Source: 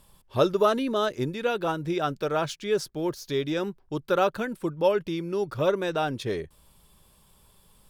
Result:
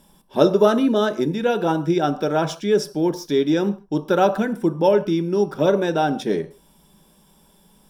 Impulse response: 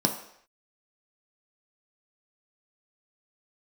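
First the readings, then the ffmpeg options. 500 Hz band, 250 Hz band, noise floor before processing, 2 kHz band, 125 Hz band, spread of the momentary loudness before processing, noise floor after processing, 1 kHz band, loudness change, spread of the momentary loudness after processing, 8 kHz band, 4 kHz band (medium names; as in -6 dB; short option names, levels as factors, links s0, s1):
+6.5 dB, +10.0 dB, -61 dBFS, +4.0 dB, +7.0 dB, 8 LU, -56 dBFS, +5.5 dB, +7.0 dB, 7 LU, +4.5 dB, +3.5 dB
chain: -filter_complex "[0:a]asplit=2[s0][s1];[1:a]atrim=start_sample=2205,afade=t=out:st=0.21:d=0.01,atrim=end_sample=9702[s2];[s1][s2]afir=irnorm=-1:irlink=0,volume=0.282[s3];[s0][s3]amix=inputs=2:normalize=0"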